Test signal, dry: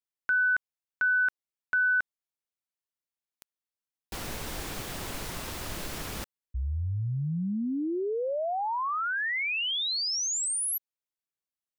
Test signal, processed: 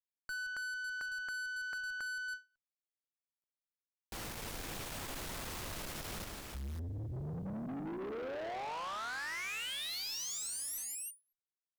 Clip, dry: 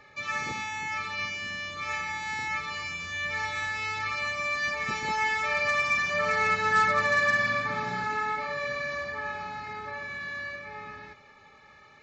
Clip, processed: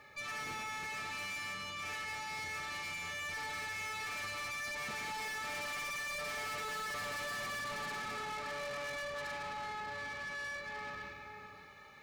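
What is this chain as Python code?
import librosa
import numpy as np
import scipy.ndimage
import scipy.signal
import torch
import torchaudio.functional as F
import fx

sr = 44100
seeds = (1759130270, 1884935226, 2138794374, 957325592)

y = fx.hum_notches(x, sr, base_hz=60, count=7)
y = fx.echo_multitap(y, sr, ms=(47, 73, 173, 329, 551), db=(-12.5, -17.5, -9.0, -9.0, -9.0))
y = fx.tube_stage(y, sr, drive_db=37.0, bias=0.35)
y = fx.quant_dither(y, sr, seeds[0], bits=12, dither='none')
y = fx.end_taper(y, sr, db_per_s=270.0)
y = F.gain(torch.from_numpy(y), -2.0).numpy()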